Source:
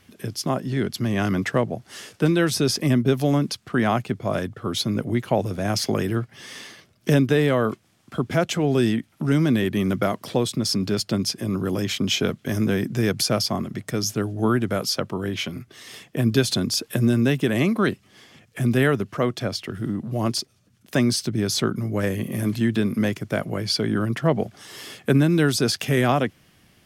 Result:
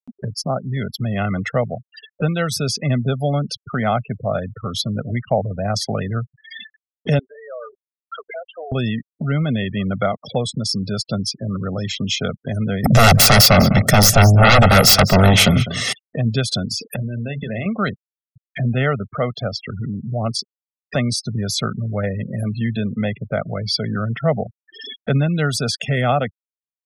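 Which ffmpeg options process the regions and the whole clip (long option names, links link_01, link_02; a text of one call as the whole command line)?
ffmpeg -i in.wav -filter_complex "[0:a]asettb=1/sr,asplit=3[link_01][link_02][link_03];[link_01]atrim=end=7.194[link_04];[link_02]atrim=start=7.19:end=8.72,asetpts=PTS-STARTPTS,afade=type=in:duration=0.004:curve=qsin,afade=type=out:start_time=1.526:duration=0.004:curve=qsin,highpass=frequency=470:width=0.5412,highpass=frequency=470:width=1.3066,acompressor=threshold=-38dB:ratio=6:attack=3.2:release=140:knee=1:detection=peak[link_05];[link_03]atrim=start=8.716[link_06];[link_04][link_05]acrossfade=duration=0.004:curve1=hsin:curve2=qsin[link_07];[link_07][link_06]acrossfade=duration=0.004:curve1=qsin:curve2=hsin,asettb=1/sr,asplit=3[link_08][link_09][link_10];[link_08]atrim=end=12.844[link_11];[link_09]atrim=start=12.84:end=15.93,asetpts=PTS-STARTPTS,afade=type=in:duration=0.004:curve=qsin,afade=type=out:start_time=3.086:duration=0.004:curve=qsin,aeval=exprs='0.355*sin(PI/2*5.62*val(0)/0.355)':channel_layout=same,aecho=1:1:201:0.188,atrim=end_sample=136269[link_12];[link_10]atrim=start=15.926[link_13];[link_11][link_12]acrossfade=duration=0.004:curve1=hsin:curve2=qsin[link_14];[link_14][link_13]acrossfade=duration=0.004:curve1=qsin:curve2=hsin,asettb=1/sr,asplit=3[link_15][link_16][link_17];[link_15]atrim=end=16.674[link_18];[link_16]atrim=start=16.67:end=17.66,asetpts=PTS-STARTPTS,afade=type=in:duration=0.004:curve=qsin,afade=type=out:start_time=0.986:duration=0.004:curve=qsin,acompressor=threshold=-22dB:ratio=10:attack=3.2:release=140:knee=1:detection=peak,bandreject=frequency=50:width_type=h:width=6,bandreject=frequency=100:width_type=h:width=6,bandreject=frequency=150:width_type=h:width=6,asplit=2[link_19][link_20];[link_20]adelay=36,volume=-10dB[link_21];[link_19][link_21]amix=inputs=2:normalize=0,atrim=end_sample=43659[link_22];[link_17]atrim=start=17.656[link_23];[link_18][link_22]acrossfade=duration=0.004:curve1=hsin:curve2=qsin[link_24];[link_24][link_23]acrossfade=duration=0.004:curve1=qsin:curve2=hsin,afftfilt=real='re*gte(hypot(re,im),0.0355)':imag='im*gte(hypot(re,im),0.0355)':win_size=1024:overlap=0.75,aecho=1:1:1.5:0.76,acompressor=mode=upward:threshold=-22dB:ratio=2.5" out.wav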